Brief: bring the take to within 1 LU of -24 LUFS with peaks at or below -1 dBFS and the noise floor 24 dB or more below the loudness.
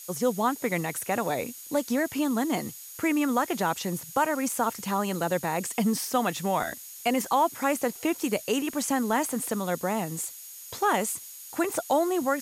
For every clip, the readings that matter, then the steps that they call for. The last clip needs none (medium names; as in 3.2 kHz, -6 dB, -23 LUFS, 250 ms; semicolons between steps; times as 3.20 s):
steady tone 6.7 kHz; tone level -48 dBFS; noise floor -44 dBFS; noise floor target -52 dBFS; loudness -28.0 LUFS; peak level -12.5 dBFS; loudness target -24.0 LUFS
-> band-stop 6.7 kHz, Q 30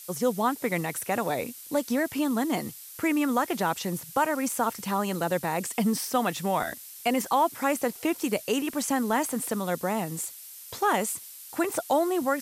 steady tone not found; noise floor -45 dBFS; noise floor target -52 dBFS
-> noise print and reduce 7 dB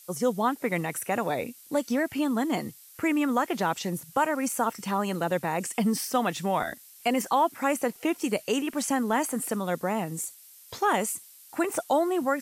noise floor -52 dBFS; loudness -28.0 LUFS; peak level -12.5 dBFS; loudness target -24.0 LUFS
-> trim +4 dB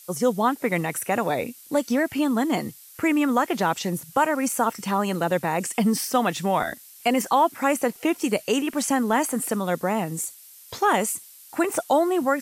loudness -24.0 LUFS; peak level -8.5 dBFS; noise floor -48 dBFS